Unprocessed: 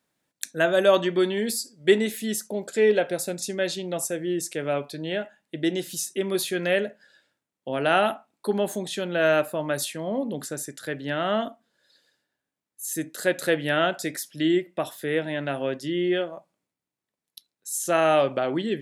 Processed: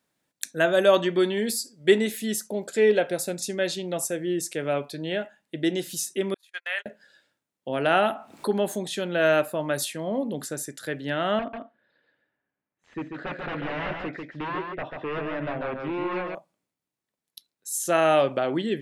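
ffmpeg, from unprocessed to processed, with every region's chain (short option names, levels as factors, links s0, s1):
-filter_complex "[0:a]asettb=1/sr,asplit=3[s0][s1][s2];[s0]atrim=end=6.344[s3];[s1]atrim=start=6.34:end=6.86,asetpts=PTS-STARTPTS,afade=t=in:d=0.004:c=qsin,afade=t=out:st=0.516:d=0.004:c=qsin,acrossover=split=2800[s4][s5];[s5]acompressor=threshold=0.0141:ratio=4:attack=1:release=60[s6];[s4][s6]amix=inputs=2:normalize=0,highpass=f=950:w=0.5412,highpass=f=950:w=1.3066,agate=range=0.00708:threshold=0.0178:ratio=16:release=100:detection=peak[s7];[s2]atrim=start=6.856[s8];[s3][s7]acrossfade=d=0.004:c1=hsin:c2=qsin[s9];[s9][s8]acrossfade=d=0.004:c1=qsin:c2=hsin,asettb=1/sr,asplit=3[s10][s11][s12];[s10]atrim=end=7.864[s13];[s11]atrim=start=7.86:end=8.5,asetpts=PTS-STARTPTS,afade=t=in:d=0.004:c=qsin,afade=t=out:st=0.636:d=0.004:c=qsin,acompressor=mode=upward:threshold=0.0708:ratio=2.5:attack=3.2:release=140:knee=2.83:detection=peak,highshelf=f=4600:g=-5.5[s14];[s12]atrim=start=8.496[s15];[s13][s14]acrossfade=d=0.004:c1=hsin:c2=qsin[s16];[s16][s15]acrossfade=d=0.004:c1=qsin:c2=hsin,asettb=1/sr,asplit=3[s17][s18][s19];[s17]atrim=end=11.394[s20];[s18]atrim=start=11.39:end=16.35,asetpts=PTS-STARTPTS,afade=t=in:d=0.004:c=qsin,afade=t=out:st=4.956:d=0.004:c=qsin,aeval=exprs='0.0562*(abs(mod(val(0)/0.0562+3,4)-2)-1)':c=same,lowpass=f=2500:w=0.5412,lowpass=f=2500:w=1.3066,aecho=1:1:142:0.596,atrim=end_sample=218736[s21];[s19]atrim=start=16.346[s22];[s20][s21]acrossfade=d=0.004:c1=hsin:c2=qsin[s23];[s23][s22]acrossfade=d=0.004:c1=qsin:c2=hsin"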